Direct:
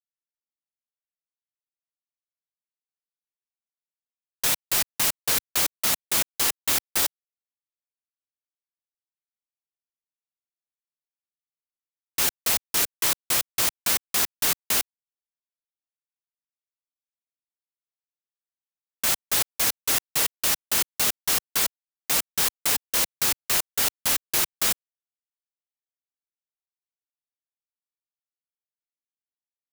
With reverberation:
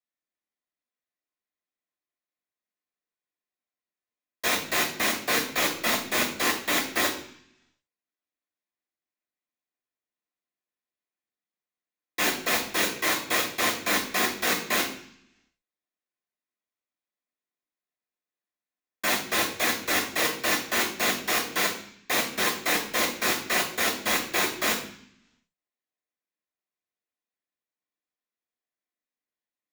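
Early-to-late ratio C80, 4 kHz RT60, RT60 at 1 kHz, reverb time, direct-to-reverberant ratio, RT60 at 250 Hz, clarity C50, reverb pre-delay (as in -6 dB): 12.0 dB, 0.80 s, 0.60 s, 0.60 s, -13.0 dB, 0.95 s, 8.0 dB, 3 ms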